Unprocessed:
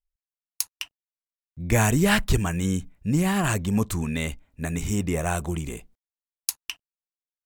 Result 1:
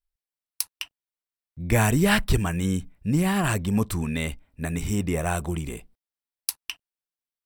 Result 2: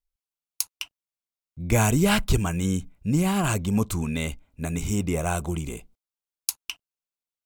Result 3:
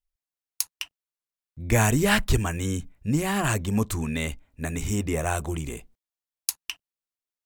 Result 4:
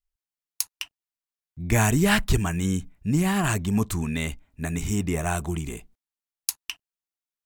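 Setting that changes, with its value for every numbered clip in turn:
band-stop, frequency: 6.7 kHz, 1.8 kHz, 180 Hz, 520 Hz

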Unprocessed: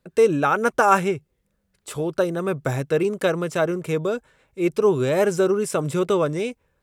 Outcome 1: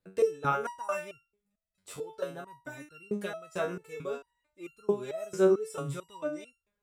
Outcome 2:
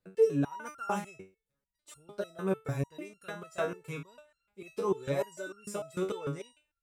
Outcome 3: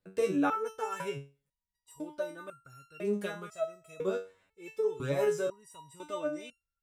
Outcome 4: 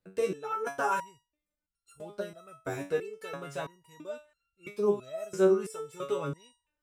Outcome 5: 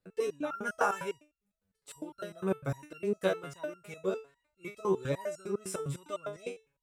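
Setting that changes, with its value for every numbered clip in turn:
resonator arpeggio, rate: 4.5 Hz, 6.7 Hz, 2 Hz, 3 Hz, 9.9 Hz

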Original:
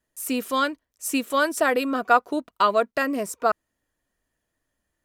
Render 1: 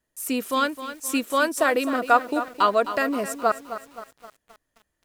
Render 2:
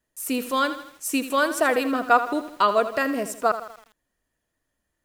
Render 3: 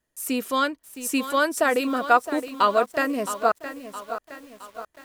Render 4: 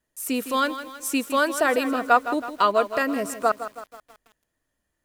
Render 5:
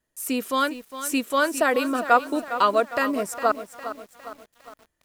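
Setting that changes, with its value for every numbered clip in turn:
bit-crushed delay, time: 261 ms, 81 ms, 666 ms, 161 ms, 407 ms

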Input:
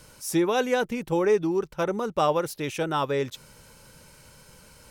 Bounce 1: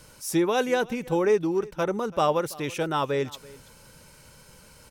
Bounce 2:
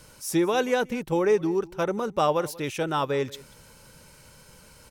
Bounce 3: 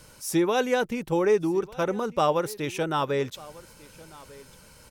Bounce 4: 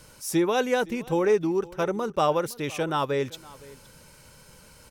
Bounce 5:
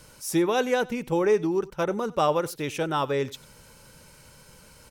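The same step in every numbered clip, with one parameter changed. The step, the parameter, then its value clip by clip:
delay, time: 332 ms, 185 ms, 1196 ms, 514 ms, 94 ms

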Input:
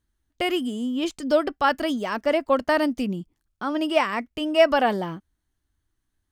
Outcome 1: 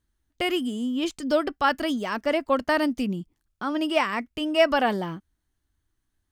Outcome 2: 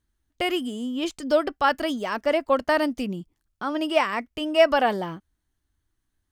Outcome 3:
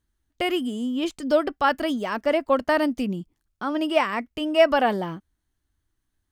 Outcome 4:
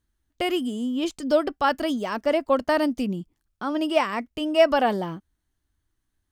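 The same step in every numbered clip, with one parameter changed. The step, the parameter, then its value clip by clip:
dynamic bell, frequency: 610 Hz, 220 Hz, 5.9 kHz, 1.9 kHz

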